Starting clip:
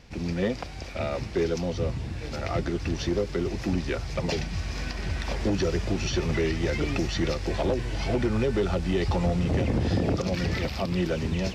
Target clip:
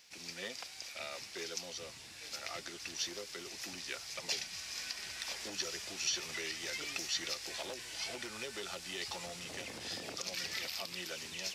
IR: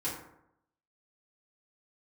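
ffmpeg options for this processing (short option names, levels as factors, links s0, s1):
-af "aderivative,volume=1.58"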